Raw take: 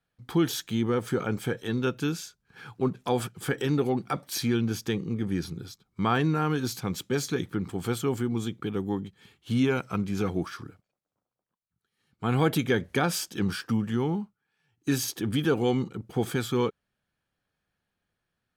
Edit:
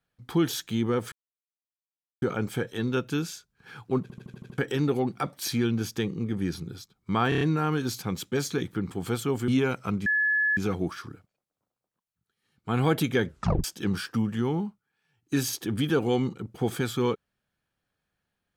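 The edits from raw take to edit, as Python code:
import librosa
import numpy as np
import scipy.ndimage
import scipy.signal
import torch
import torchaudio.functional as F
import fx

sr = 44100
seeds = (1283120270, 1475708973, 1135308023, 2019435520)

y = fx.edit(x, sr, fx.insert_silence(at_s=1.12, length_s=1.1),
    fx.stutter_over(start_s=2.92, slice_s=0.08, count=7),
    fx.stutter(start_s=6.19, slice_s=0.03, count=5),
    fx.cut(start_s=8.26, length_s=1.28),
    fx.insert_tone(at_s=10.12, length_s=0.51, hz=1710.0, db=-21.0),
    fx.tape_stop(start_s=12.82, length_s=0.37), tone=tone)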